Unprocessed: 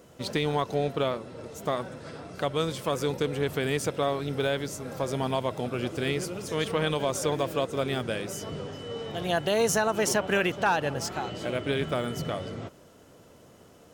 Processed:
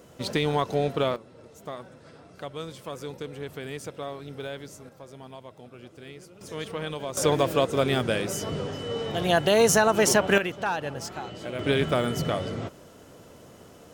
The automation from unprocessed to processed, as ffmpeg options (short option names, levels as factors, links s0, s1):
-af "asetnsamples=n=441:p=0,asendcmd='1.16 volume volume -8.5dB;4.89 volume volume -15.5dB;6.41 volume volume -6dB;7.17 volume volume 5dB;10.38 volume volume -3.5dB;11.59 volume volume 4.5dB',volume=1.26"